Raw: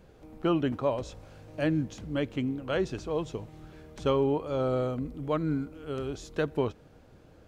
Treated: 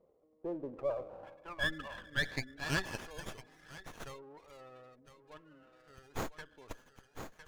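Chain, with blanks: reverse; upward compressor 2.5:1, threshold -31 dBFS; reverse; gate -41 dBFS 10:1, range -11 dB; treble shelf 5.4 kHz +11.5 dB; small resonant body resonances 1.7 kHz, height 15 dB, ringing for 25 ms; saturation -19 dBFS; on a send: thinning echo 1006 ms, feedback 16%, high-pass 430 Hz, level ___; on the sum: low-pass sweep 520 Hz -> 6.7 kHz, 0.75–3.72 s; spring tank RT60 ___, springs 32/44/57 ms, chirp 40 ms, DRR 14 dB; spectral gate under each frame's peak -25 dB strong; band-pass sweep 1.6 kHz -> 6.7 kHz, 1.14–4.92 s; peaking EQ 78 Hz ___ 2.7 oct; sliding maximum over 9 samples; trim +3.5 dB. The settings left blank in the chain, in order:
-8 dB, 2.3 s, +3.5 dB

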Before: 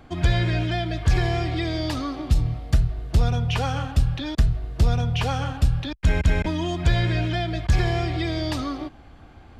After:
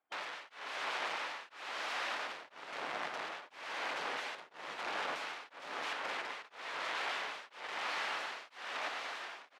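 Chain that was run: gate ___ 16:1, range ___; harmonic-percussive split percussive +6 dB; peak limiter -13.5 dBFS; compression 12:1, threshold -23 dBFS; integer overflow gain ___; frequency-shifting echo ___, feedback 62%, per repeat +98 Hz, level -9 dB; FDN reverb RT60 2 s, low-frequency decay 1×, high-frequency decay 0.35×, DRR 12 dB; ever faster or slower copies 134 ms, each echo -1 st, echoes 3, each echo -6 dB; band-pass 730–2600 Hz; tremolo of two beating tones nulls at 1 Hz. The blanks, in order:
-32 dBFS, -33 dB, 29.5 dB, 482 ms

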